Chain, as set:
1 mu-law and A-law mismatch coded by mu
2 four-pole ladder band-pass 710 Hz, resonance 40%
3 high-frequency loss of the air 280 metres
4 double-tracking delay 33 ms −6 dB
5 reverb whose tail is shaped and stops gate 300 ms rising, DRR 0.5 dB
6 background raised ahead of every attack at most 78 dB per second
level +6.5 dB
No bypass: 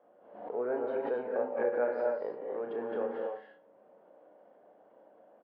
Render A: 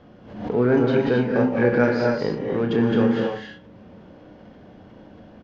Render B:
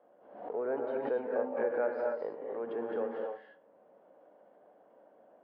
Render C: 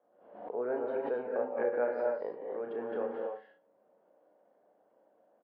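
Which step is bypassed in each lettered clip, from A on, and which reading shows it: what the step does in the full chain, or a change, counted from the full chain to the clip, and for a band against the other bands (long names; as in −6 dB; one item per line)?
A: 2, 250 Hz band +12.5 dB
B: 4, change in integrated loudness −1.0 LU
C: 1, distortion level −21 dB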